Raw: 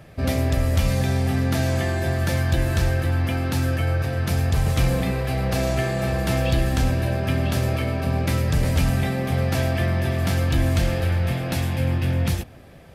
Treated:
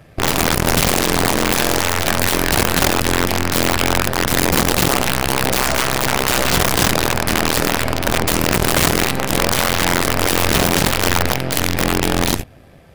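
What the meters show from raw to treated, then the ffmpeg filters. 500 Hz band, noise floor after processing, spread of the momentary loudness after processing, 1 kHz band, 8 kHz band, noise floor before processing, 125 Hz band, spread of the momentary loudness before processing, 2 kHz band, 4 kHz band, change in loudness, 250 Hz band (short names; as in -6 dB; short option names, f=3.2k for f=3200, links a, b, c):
+7.0 dB, -43 dBFS, 3 LU, +12.5 dB, +17.0 dB, -44 dBFS, -3.0 dB, 3 LU, +11.0 dB, +14.5 dB, +6.5 dB, +5.5 dB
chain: -af "aeval=exprs='0.335*(cos(1*acos(clip(val(0)/0.335,-1,1)))-cos(1*PI/2))+0.0531*(cos(3*acos(clip(val(0)/0.335,-1,1)))-cos(3*PI/2))+0.00237*(cos(4*acos(clip(val(0)/0.335,-1,1)))-cos(4*PI/2))+0.0668*(cos(6*acos(clip(val(0)/0.335,-1,1)))-cos(6*PI/2))':c=same,aeval=exprs='(mod(5.01*val(0)+1,2)-1)/5.01':c=same,volume=6dB"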